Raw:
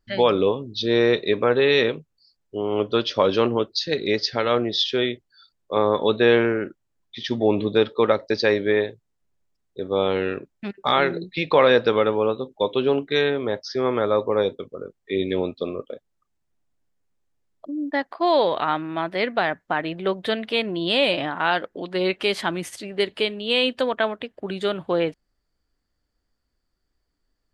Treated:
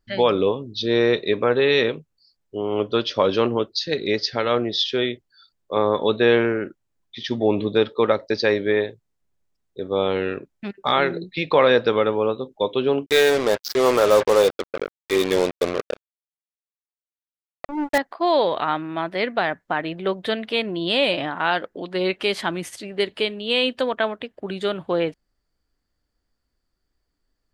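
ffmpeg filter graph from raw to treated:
-filter_complex "[0:a]asettb=1/sr,asplit=3[a][b][c];[a]atrim=end=13.064[d];[b]atrim=start=13.06:end=17.98,asetpts=PTS-STARTPTS,afade=t=in:d=0.004:c=qsin,afade=t=out:st=4.916:d=0.004:c=qsin,equalizer=f=530:w=0.93:g=4.5,asplit=2[e][f];[f]highpass=f=720:p=1,volume=11dB,asoftclip=type=tanh:threshold=-6dB[g];[e][g]amix=inputs=2:normalize=0,lowpass=f=7.9k:p=1,volume=-6dB,acrusher=bits=3:mix=0:aa=0.5[h];[c]atrim=start=17.976[i];[d][h]acrossfade=d=0.004:c1=hsin:c2=qsin[j];[j][i]acrossfade=d=0.004:c1=qsin:c2=hsin"

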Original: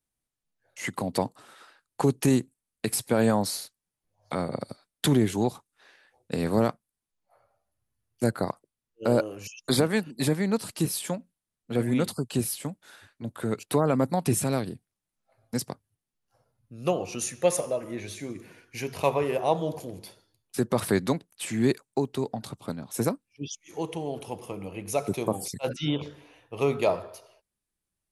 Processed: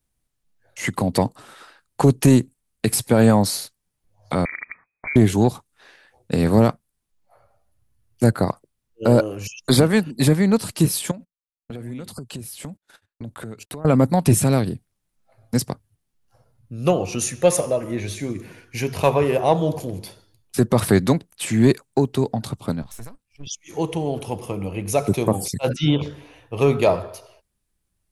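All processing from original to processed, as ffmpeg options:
-filter_complex "[0:a]asettb=1/sr,asplit=3[a][b][c];[a]atrim=end=4.454[d];[b]atrim=start=4.45:end=5.16,asetpts=PTS-STARTPTS,afade=t=in:d=0.004:c=qsin,afade=t=out:st=0.706:d=0.004:c=qsin,acompressor=threshold=-34dB:ratio=4:attack=3.2:release=140:knee=1:detection=peak,lowpass=f=2.1k:t=q:w=0.5098,lowpass=f=2.1k:t=q:w=0.6013,lowpass=f=2.1k:t=q:w=0.9,lowpass=f=2.1k:t=q:w=2.563,afreqshift=-2500,lowshelf=f=220:g=7.5[e];[c]atrim=start=5.156[f];[d][e]acrossfade=d=0.004:c1=hsin:c2=qsin[g];[g][f]acrossfade=d=0.004:c1=qsin:c2=hsin,asettb=1/sr,asplit=3[h][i][j];[h]atrim=end=11.114[k];[i]atrim=start=11.11:end=13.85,asetpts=PTS-STARTPTS,afade=t=in:d=0.004:c=qsin,afade=t=out:st=2.736:d=0.004:c=qsin,agate=range=-34dB:threshold=-50dB:ratio=16:release=100:detection=peak,acompressor=threshold=-39dB:ratio=10:attack=3.2:release=140:knee=1:detection=peak[l];[j]atrim=start=13.846[m];[k][l]acrossfade=d=0.004:c1=hsin:c2=qsin[n];[n][m]acrossfade=d=0.004:c1=qsin:c2=hsin,asettb=1/sr,asplit=3[o][p][q];[o]atrim=end=22.824[r];[p]atrim=start=22.82:end=23.47,asetpts=PTS-STARTPTS,afade=t=in:d=0.004:c=qsin,afade=t=out:st=0.646:d=0.004:c=qsin,aeval=exprs='if(lt(val(0),0),0.447*val(0),val(0))':c=same,equalizer=f=320:w=0.68:g=-10.5,acompressor=threshold=-44dB:ratio=6:attack=3.2:release=140:knee=1:detection=peak[s];[q]atrim=start=23.466[t];[r][s]acrossfade=d=0.004:c1=hsin:c2=qsin[u];[u][t]acrossfade=d=0.004:c1=qsin:c2=hsin,lowshelf=f=130:g=10.5,acontrast=71"

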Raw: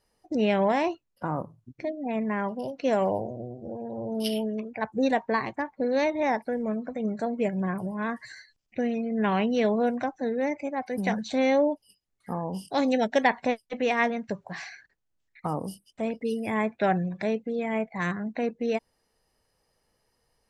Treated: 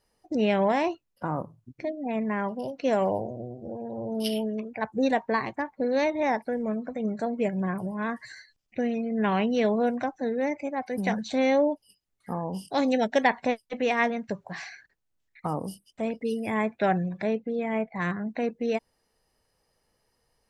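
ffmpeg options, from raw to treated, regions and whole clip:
-filter_complex "[0:a]asettb=1/sr,asplit=3[a][b][c];[a]atrim=end=17.214[d];[b]atrim=start=17.21:end=18.28,asetpts=PTS-STARTPTS,afade=t=in:d=0.004:c=qsin,afade=t=out:st=1.066:d=0.004:c=qsin,aemphasis=mode=reproduction:type=cd,bandreject=f=6.4k:w=17[e];[c]atrim=start=18.276[f];[d][e]acrossfade=d=0.004:c1=hsin:c2=qsin[g];[g][f]acrossfade=d=0.004:c1=qsin:c2=hsin"

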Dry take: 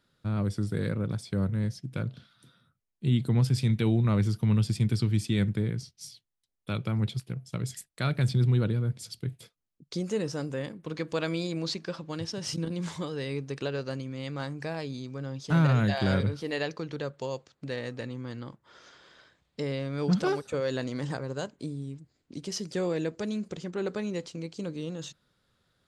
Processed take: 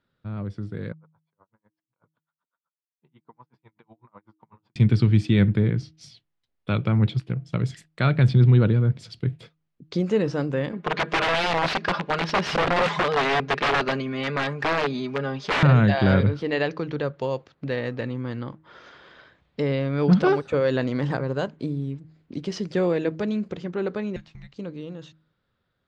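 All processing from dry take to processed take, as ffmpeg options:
-filter_complex "[0:a]asettb=1/sr,asplit=3[a][b][c];[a]atrim=end=0.924[d];[b]atrim=start=0.92:end=4.76,asetpts=PTS-STARTPTS,afade=t=in:d=0.004:c=qsin,afade=t=out:st=3.836:d=0.004:c=qsin,bandpass=f=960:t=q:w=4.8,flanger=delay=3.3:depth=4.8:regen=-55:speed=1.2:shape=sinusoidal,aeval=exprs='val(0)*pow(10,-38*(0.5-0.5*cos(2*PI*8*n/s))/20)':c=same[e];[c]atrim=start=4.756[f];[d][e]acrossfade=d=0.004:c1=hsin:c2=qsin[g];[g][f]acrossfade=d=0.004:c1=qsin:c2=hsin,asettb=1/sr,asplit=3[h][i][j];[h]atrim=end=10.724[k];[i]atrim=start=10.72:end=15.63,asetpts=PTS-STARTPTS,afade=t=in:d=0.004:c=qsin,afade=t=out:st=4.906:d=0.004:c=qsin,aecho=1:1:4.9:0.86,atrim=end_sample=216531,aeval=exprs='(mod(21.1*val(0)+1,2)-1)/21.1':c=same,asplit=2[l][m];[m]highpass=f=720:p=1,volume=13dB,asoftclip=type=tanh:threshold=-16.5dB[n];[l][n]amix=inputs=2:normalize=0,lowpass=f=3.3k:p=1,volume=-6dB[o];[j]atrim=start=15.626[p];[k][o]acrossfade=d=0.004:c1=hsin:c2=qsin[q];[q][p]acrossfade=d=0.004:c1=qsin:c2=hsin,asettb=1/sr,asplit=3[r][s][t];[r]atrim=end=24.164[u];[s]atrim=start=24.16:end=24.56,asetpts=PTS-STARTPTS,afade=t=in:d=0.004:c=qsin,afade=t=out:st=0.396:d=0.004:c=qsin,acrossover=split=820|2200[v][w][x];[v]acompressor=threshold=-44dB:ratio=4[y];[w]acompressor=threshold=-53dB:ratio=4[z];[x]acompressor=threshold=-51dB:ratio=4[aa];[y][z][aa]amix=inputs=3:normalize=0,afreqshift=-300[ab];[t]atrim=start=24.556[ac];[u][ab]acrossfade=d=0.004:c1=hsin:c2=qsin[ad];[ad][ac]acrossfade=d=0.004:c1=qsin:c2=hsin,lowpass=3k,bandreject=f=157.6:t=h:w=4,bandreject=f=315.2:t=h:w=4,dynaudnorm=f=810:g=7:m=11.5dB,volume=-3dB"

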